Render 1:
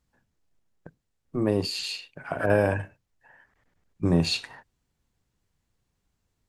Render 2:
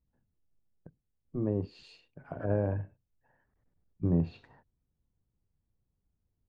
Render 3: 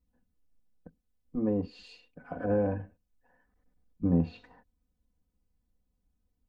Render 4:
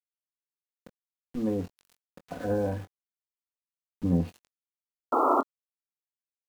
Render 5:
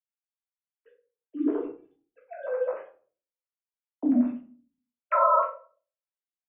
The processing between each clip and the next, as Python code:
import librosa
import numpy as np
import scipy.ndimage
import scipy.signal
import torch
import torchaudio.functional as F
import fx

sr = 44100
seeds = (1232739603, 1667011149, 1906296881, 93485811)

y1 = fx.high_shelf(x, sr, hz=6700.0, db=-9.5)
y1 = fx.env_lowpass_down(y1, sr, base_hz=2400.0, full_db=-21.0)
y1 = fx.curve_eq(y1, sr, hz=(100.0, 490.0, 2300.0), db=(0, -6, -18))
y1 = F.gain(torch.from_numpy(y1), -2.5).numpy()
y2 = y1 + 1.0 * np.pad(y1, (int(4.0 * sr / 1000.0), 0))[:len(y1)]
y3 = fx.spec_paint(y2, sr, seeds[0], shape='noise', start_s=5.12, length_s=0.29, low_hz=240.0, high_hz=1400.0, level_db=-23.0)
y3 = np.where(np.abs(y3) >= 10.0 ** (-43.0 / 20.0), y3, 0.0)
y3 = fx.doubler(y3, sr, ms=22.0, db=-11.0)
y4 = fx.sine_speech(y3, sr)
y4 = fx.room_shoebox(y4, sr, seeds[1], volume_m3=280.0, walls='furnished', distance_m=2.9)
y4 = F.gain(torch.from_numpy(y4), -4.5).numpy()